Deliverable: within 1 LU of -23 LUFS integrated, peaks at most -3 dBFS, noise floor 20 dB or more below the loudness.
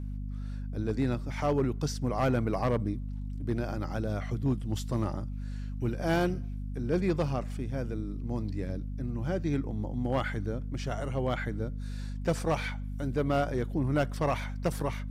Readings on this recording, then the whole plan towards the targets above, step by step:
clipped 0.5%; flat tops at -20.0 dBFS; hum 50 Hz; harmonics up to 250 Hz; hum level -33 dBFS; loudness -32.0 LUFS; peak -20.0 dBFS; loudness target -23.0 LUFS
-> clip repair -20 dBFS; notches 50/100/150/200/250 Hz; gain +9 dB

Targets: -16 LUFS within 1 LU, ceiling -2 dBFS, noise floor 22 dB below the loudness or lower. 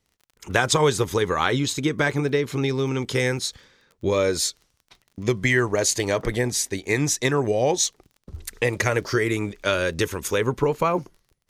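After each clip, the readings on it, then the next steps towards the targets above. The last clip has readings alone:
ticks 23/s; loudness -23.0 LUFS; peak -3.5 dBFS; loudness target -16.0 LUFS
-> de-click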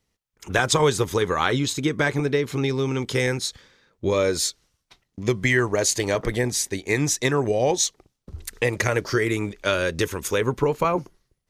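ticks 0.087/s; loudness -23.0 LUFS; peak -4.5 dBFS; loudness target -16.0 LUFS
-> gain +7 dB; limiter -2 dBFS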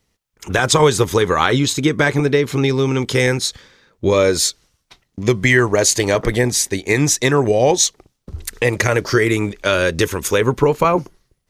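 loudness -16.5 LUFS; peak -2.0 dBFS; noise floor -69 dBFS

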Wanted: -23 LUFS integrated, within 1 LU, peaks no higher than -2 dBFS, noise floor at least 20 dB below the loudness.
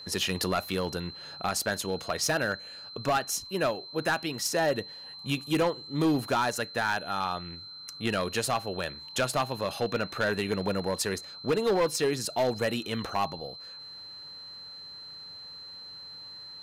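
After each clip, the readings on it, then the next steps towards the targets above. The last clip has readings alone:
clipped 1.2%; flat tops at -20.5 dBFS; steady tone 4100 Hz; tone level -42 dBFS; loudness -29.5 LUFS; peak -20.5 dBFS; loudness target -23.0 LUFS
-> clip repair -20.5 dBFS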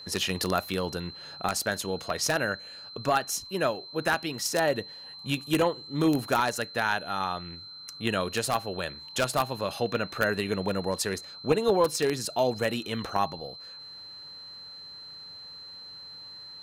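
clipped 0.0%; steady tone 4100 Hz; tone level -42 dBFS
-> notch 4100 Hz, Q 30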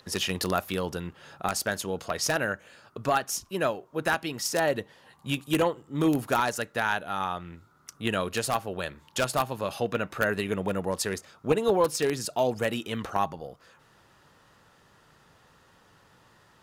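steady tone none; loudness -29.0 LUFS; peak -11.0 dBFS; loudness target -23.0 LUFS
-> gain +6 dB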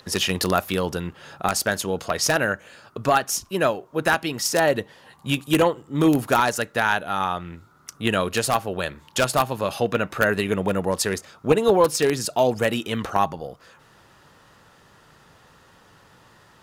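loudness -23.0 LUFS; peak -5.0 dBFS; noise floor -54 dBFS

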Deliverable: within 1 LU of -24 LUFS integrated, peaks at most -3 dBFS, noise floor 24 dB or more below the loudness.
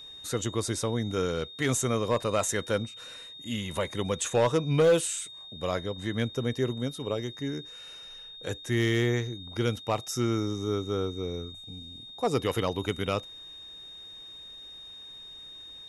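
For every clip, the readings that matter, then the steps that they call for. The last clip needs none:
clipped 0.3%; flat tops at -16.5 dBFS; steady tone 3700 Hz; tone level -43 dBFS; loudness -29.5 LUFS; peak -16.5 dBFS; loudness target -24.0 LUFS
-> clip repair -16.5 dBFS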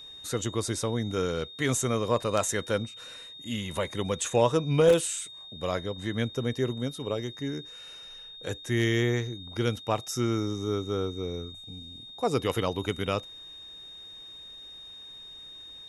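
clipped 0.0%; steady tone 3700 Hz; tone level -43 dBFS
-> notch 3700 Hz, Q 30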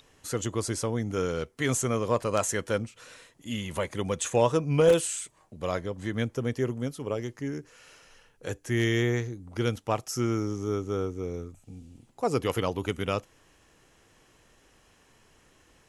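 steady tone none; loudness -29.0 LUFS; peak -9.0 dBFS; loudness target -24.0 LUFS
-> gain +5 dB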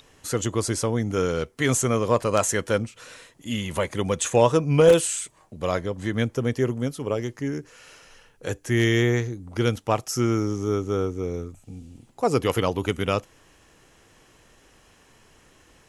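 loudness -24.0 LUFS; peak -4.0 dBFS; noise floor -58 dBFS

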